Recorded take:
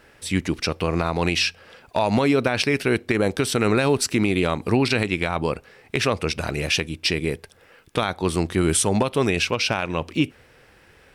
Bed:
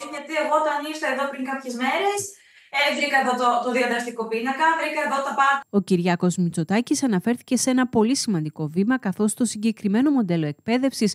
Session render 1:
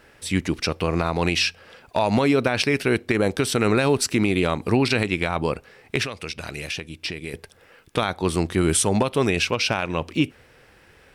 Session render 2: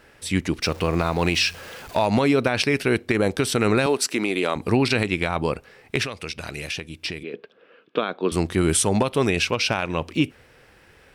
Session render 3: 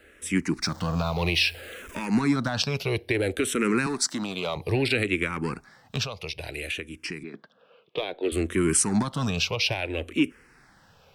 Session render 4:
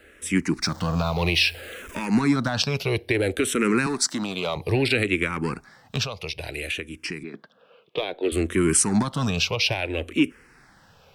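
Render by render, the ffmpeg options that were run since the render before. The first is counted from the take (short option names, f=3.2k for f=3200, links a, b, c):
-filter_complex "[0:a]asettb=1/sr,asplit=3[a][b][c];[a]atrim=end=6.034[d];[b]atrim=start=6.03:end=7.34,asetpts=PTS-STARTPTS,afade=t=in:d=0.004:c=qsin,afade=t=out:st=1.306:d=0.004:c=qsin,acrossover=split=1800|5200[e][f][g];[e]acompressor=threshold=-33dB:ratio=4[h];[f]acompressor=threshold=-32dB:ratio=4[i];[g]acompressor=threshold=-42dB:ratio=4[j];[h][i][j]amix=inputs=3:normalize=0[k];[c]atrim=start=7.336[l];[d][k]acrossfade=d=0.004:c1=hsin:c2=qsin[m];[m][l]acrossfade=d=0.004:c1=qsin:c2=hsin"
-filter_complex "[0:a]asettb=1/sr,asplit=3[a][b][c];[a]atrim=end=0.624[d];[b]atrim=start=0.62:end=2.06,asetpts=PTS-STARTPTS,afade=t=in:d=0.004:c=qsin,afade=t=out:st=1.436:d=0.004:c=qsin,aeval=exprs='val(0)+0.5*0.015*sgn(val(0))':c=same[e];[c]atrim=start=2.056[f];[d][e]acrossfade=d=0.004:c1=hsin:c2=qsin[g];[g][f]acrossfade=d=0.004:c1=qsin:c2=hsin,asettb=1/sr,asplit=3[h][i][j];[h]atrim=end=3.864[k];[i]atrim=start=3.86:end=4.56,asetpts=PTS-STARTPTS,afade=t=in:d=0.004:c=qsin,afade=t=out:st=0.696:d=0.004:c=qsin,highpass=300[l];[j]atrim=start=4.556[m];[k][l]acrossfade=d=0.004:c1=hsin:c2=qsin[n];[n][m]acrossfade=d=0.004:c1=qsin:c2=hsin,asettb=1/sr,asplit=3[o][p][q];[o]atrim=end=7.234[r];[p]atrim=start=7.23:end=8.32,asetpts=PTS-STARTPTS,afade=t=in:d=0.004:c=qsin,afade=t=out:st=1.086:d=0.004:c=qsin,highpass=f=200:w=0.5412,highpass=f=200:w=1.3066,equalizer=f=450:t=q:w=4:g=4,equalizer=f=840:t=q:w=4:g=-9,equalizer=f=2k:t=q:w=4:g=-9,lowpass=f=3.3k:w=0.5412,lowpass=f=3.3k:w=1.3066[s];[q]atrim=start=8.316[t];[r][s]acrossfade=d=0.004:c1=hsin:c2=qsin[u];[u][t]acrossfade=d=0.004:c1=qsin:c2=hsin"
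-filter_complex "[0:a]acrossover=split=360|1200|4100[a][b][c][d];[b]asoftclip=type=hard:threshold=-29dB[e];[a][e][c][d]amix=inputs=4:normalize=0,asplit=2[f][g];[g]afreqshift=-0.6[h];[f][h]amix=inputs=2:normalize=1"
-af "volume=2.5dB"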